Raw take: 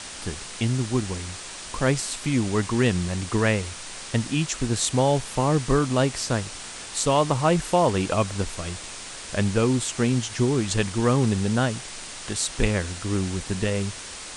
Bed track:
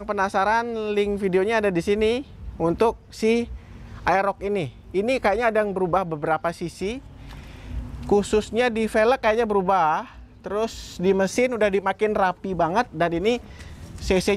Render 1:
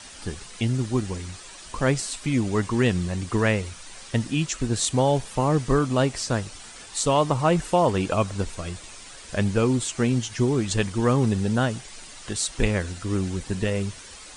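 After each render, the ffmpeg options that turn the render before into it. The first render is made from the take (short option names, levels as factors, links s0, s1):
-af "afftdn=nr=9:nf=-38"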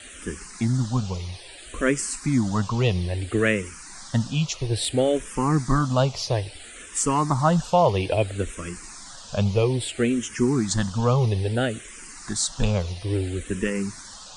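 -filter_complex "[0:a]asplit=2[s0][s1];[s1]asoftclip=type=tanh:threshold=0.224,volume=0.531[s2];[s0][s2]amix=inputs=2:normalize=0,asplit=2[s3][s4];[s4]afreqshift=-0.6[s5];[s3][s5]amix=inputs=2:normalize=1"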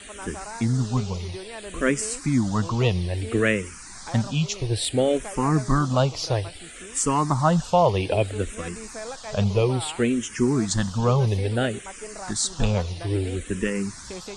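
-filter_complex "[1:a]volume=0.133[s0];[0:a][s0]amix=inputs=2:normalize=0"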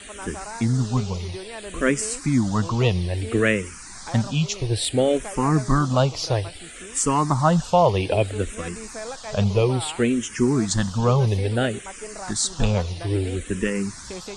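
-af "volume=1.19"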